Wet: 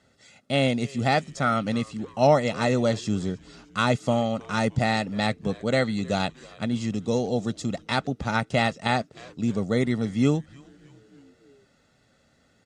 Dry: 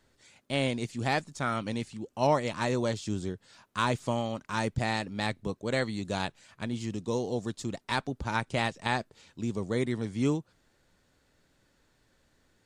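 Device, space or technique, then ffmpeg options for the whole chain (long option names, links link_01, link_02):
filter by subtraction: -filter_complex "[0:a]lowpass=8400,lowshelf=frequency=400:width_type=q:width=1.5:gain=6.5,aecho=1:1:1.5:0.69,asplit=5[link_01][link_02][link_03][link_04][link_05];[link_02]adelay=310,afreqshift=-140,volume=-22dB[link_06];[link_03]adelay=620,afreqshift=-280,volume=-27.8dB[link_07];[link_04]adelay=930,afreqshift=-420,volume=-33.7dB[link_08];[link_05]adelay=1240,afreqshift=-560,volume=-39.5dB[link_09];[link_01][link_06][link_07][link_08][link_09]amix=inputs=5:normalize=0,asplit=2[link_10][link_11];[link_11]lowpass=420,volume=-1[link_12];[link_10][link_12]amix=inputs=2:normalize=0,volume=3.5dB"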